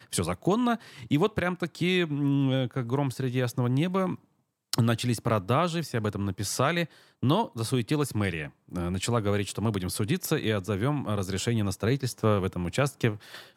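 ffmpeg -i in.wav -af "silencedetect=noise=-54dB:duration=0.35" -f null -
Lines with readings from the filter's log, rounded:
silence_start: 4.24
silence_end: 4.73 | silence_duration: 0.49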